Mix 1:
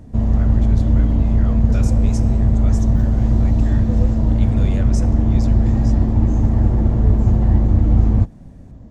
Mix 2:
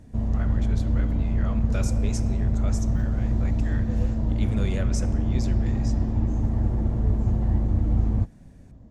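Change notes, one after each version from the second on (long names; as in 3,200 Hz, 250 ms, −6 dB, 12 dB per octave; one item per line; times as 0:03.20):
background −8.5 dB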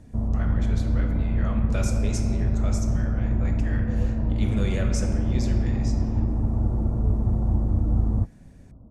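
speech: send +9.0 dB
background: add linear-phase brick-wall low-pass 1,500 Hz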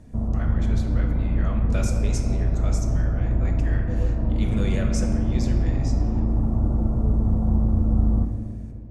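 background: send on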